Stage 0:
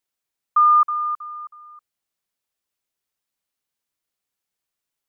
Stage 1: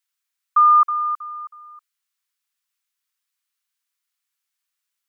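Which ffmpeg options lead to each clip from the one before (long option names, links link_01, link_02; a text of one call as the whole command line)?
ffmpeg -i in.wav -af "highpass=frequency=1100:width=0.5412,highpass=frequency=1100:width=1.3066,volume=3dB" out.wav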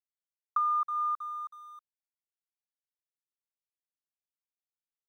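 ffmpeg -i in.wav -af "acompressor=threshold=-22dB:ratio=6,aeval=exprs='sgn(val(0))*max(abs(val(0))-0.00126,0)':channel_layout=same,volume=-5dB" out.wav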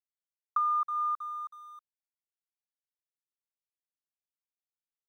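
ffmpeg -i in.wav -af anull out.wav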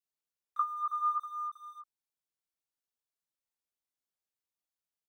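ffmpeg -i in.wav -filter_complex "[0:a]flanger=delay=15:depth=2.8:speed=0.71,acrossover=split=2100[link_01][link_02];[link_01]adelay=30[link_03];[link_03][link_02]amix=inputs=2:normalize=0,volume=4dB" out.wav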